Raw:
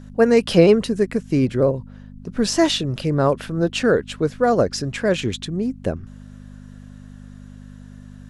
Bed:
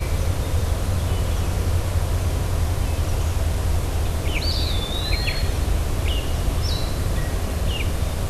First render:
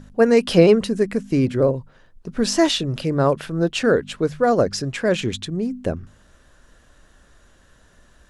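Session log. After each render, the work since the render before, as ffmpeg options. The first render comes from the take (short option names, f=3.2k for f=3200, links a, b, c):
-af "bandreject=f=50:t=h:w=4,bandreject=f=100:t=h:w=4,bandreject=f=150:t=h:w=4,bandreject=f=200:t=h:w=4,bandreject=f=250:t=h:w=4"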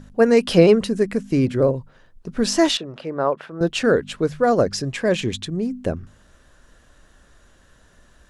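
-filter_complex "[0:a]asettb=1/sr,asplit=3[a][b][c];[a]atrim=end=2.774[d];[b]atrim=start=2.77:end=3.61,asetpts=PTS-STARTPTS,afade=t=in:d=0.004:c=qsin,afade=t=out:st=0.836:d=0.004:c=qsin,bandpass=f=900:t=q:w=0.77[e];[c]atrim=start=3.606[f];[d][e]acrossfade=d=0.004:c1=hsin:c2=qsin[g];[g][f]acrossfade=d=0.004:c1=qsin:c2=hsin,asettb=1/sr,asplit=3[h][i][j];[h]atrim=end=4.754[k];[i]atrim=start=4.75:end=5.4,asetpts=PTS-STARTPTS,afade=t=in:d=0.004:c=qsin,afade=t=out:st=0.646:d=0.004:c=qsin,bandreject=f=1.4k:w=7.9[l];[j]atrim=start=5.396[m];[k][l]acrossfade=d=0.004:c1=hsin:c2=qsin[n];[n][m]acrossfade=d=0.004:c1=qsin:c2=hsin"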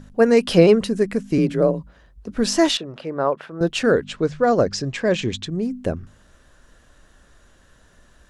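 -filter_complex "[0:a]asettb=1/sr,asplit=3[a][b][c];[a]atrim=end=1.384[d];[b]atrim=start=1.38:end=2.36,asetpts=PTS-STARTPTS,afade=t=in:d=0.004:c=qsin,afade=t=out:st=0.976:d=0.004:c=qsin,afreqshift=35[e];[c]atrim=start=2.356[f];[d][e]acrossfade=d=0.004:c1=hsin:c2=qsin[g];[g][f]acrossfade=d=0.004:c1=qsin:c2=hsin,asettb=1/sr,asplit=3[h][i][j];[h]atrim=end=4.054[k];[i]atrim=start=4.05:end=5.51,asetpts=PTS-STARTPTS,afade=t=in:d=0.004:c=qsin,afade=t=out:st=1.456:d=0.004:c=qsin,lowpass=f=7.7k:w=0.5412,lowpass=f=7.7k:w=1.3066[l];[j]atrim=start=5.506[m];[k][l]acrossfade=d=0.004:c1=hsin:c2=qsin[n];[n][m]acrossfade=d=0.004:c1=qsin:c2=hsin"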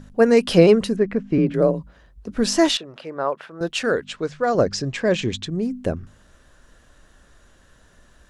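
-filter_complex "[0:a]asettb=1/sr,asplit=3[a][b][c];[a]atrim=end=0.964[d];[b]atrim=start=0.96:end=1.54,asetpts=PTS-STARTPTS,afade=t=in:d=0.004:c=qsin,afade=t=out:st=0.576:d=0.004:c=qsin,lowpass=2.4k[e];[c]atrim=start=1.536[f];[d][e]acrossfade=d=0.004:c1=hsin:c2=qsin[g];[g][f]acrossfade=d=0.004:c1=qsin:c2=hsin,asettb=1/sr,asplit=3[h][i][j];[h]atrim=end=2.774[k];[i]atrim=start=2.77:end=4.55,asetpts=PTS-STARTPTS,afade=t=in:d=0.004:c=qsin,afade=t=out:st=1.776:d=0.004:c=qsin,lowshelf=f=460:g=-8.5[l];[j]atrim=start=4.546[m];[k][l]acrossfade=d=0.004:c1=hsin:c2=qsin[n];[n][m]acrossfade=d=0.004:c1=qsin:c2=hsin"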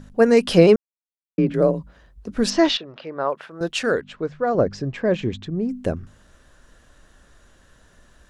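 -filter_complex "[0:a]asettb=1/sr,asplit=3[a][b][c];[a]atrim=end=2.504[d];[b]atrim=start=2.5:end=3.3,asetpts=PTS-STARTPTS,afade=t=in:d=0.004:c=qsin,afade=t=out:st=0.796:d=0.004:c=qsin,lowpass=f=5.1k:w=0.5412,lowpass=f=5.1k:w=1.3066[e];[c]atrim=start=3.296[f];[d][e]acrossfade=d=0.004:c1=hsin:c2=qsin[g];[g][f]acrossfade=d=0.004:c1=qsin:c2=hsin,asettb=1/sr,asplit=3[h][i][j];[h]atrim=end=4.014[k];[i]atrim=start=4.01:end=5.69,asetpts=PTS-STARTPTS,afade=t=in:d=0.004:c=qsin,afade=t=out:st=1.676:d=0.004:c=qsin,lowpass=f=1.3k:p=1[l];[j]atrim=start=5.686[m];[k][l]acrossfade=d=0.004:c1=hsin:c2=qsin[n];[n][m]acrossfade=d=0.004:c1=qsin:c2=hsin,asplit=3[o][p][q];[o]atrim=end=0.76,asetpts=PTS-STARTPTS,afade=t=out:st=0.756:d=0.004:c=hsin[r];[p]atrim=start=0.76:end=1.38,asetpts=PTS-STARTPTS,volume=0[s];[q]atrim=start=1.38,asetpts=PTS-STARTPTS,afade=t=in:d=0.004:c=hsin[t];[r][s][t]concat=n=3:v=0:a=1"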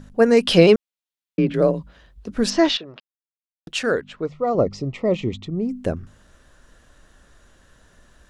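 -filter_complex "[0:a]asettb=1/sr,asplit=3[a][b][c];[a]atrim=end=0.454[d];[b]atrim=start=0.45:end=2.29,asetpts=PTS-STARTPTS,afade=t=in:d=0.004:c=qsin,afade=t=out:st=1.836:d=0.004:c=qsin,equalizer=f=3.3k:t=o:w=1.2:g=7[e];[c]atrim=start=2.286[f];[d][e]acrossfade=d=0.004:c1=hsin:c2=qsin[g];[g][f]acrossfade=d=0.004:c1=qsin:c2=hsin,asettb=1/sr,asplit=3[h][i][j];[h]atrim=end=4.254[k];[i]atrim=start=4.25:end=5.76,asetpts=PTS-STARTPTS,afade=t=in:d=0.004:c=qsin,afade=t=out:st=1.506:d=0.004:c=qsin,asuperstop=centerf=1600:order=8:qfactor=3.4[l];[j]atrim=start=5.756[m];[k][l]acrossfade=d=0.004:c1=hsin:c2=qsin[n];[n][m]acrossfade=d=0.004:c1=qsin:c2=hsin,asplit=3[o][p][q];[o]atrim=end=3,asetpts=PTS-STARTPTS,afade=t=out:st=2.996:d=0.004:c=hsin[r];[p]atrim=start=3:end=3.67,asetpts=PTS-STARTPTS,volume=0[s];[q]atrim=start=3.67,asetpts=PTS-STARTPTS,afade=t=in:d=0.004:c=hsin[t];[r][s][t]concat=n=3:v=0:a=1"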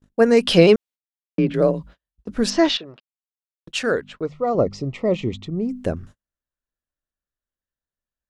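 -af "agate=range=-41dB:threshold=-40dB:ratio=16:detection=peak"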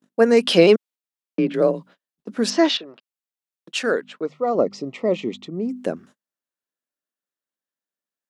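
-af "highpass=f=200:w=0.5412,highpass=f=200:w=1.3066"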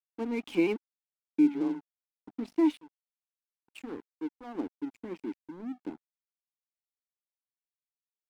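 -filter_complex "[0:a]asplit=3[a][b][c];[a]bandpass=f=300:t=q:w=8,volume=0dB[d];[b]bandpass=f=870:t=q:w=8,volume=-6dB[e];[c]bandpass=f=2.24k:t=q:w=8,volume=-9dB[f];[d][e][f]amix=inputs=3:normalize=0,aeval=exprs='sgn(val(0))*max(abs(val(0))-0.00596,0)':c=same"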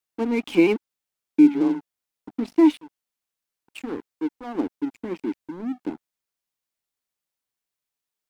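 -af "volume=9dB"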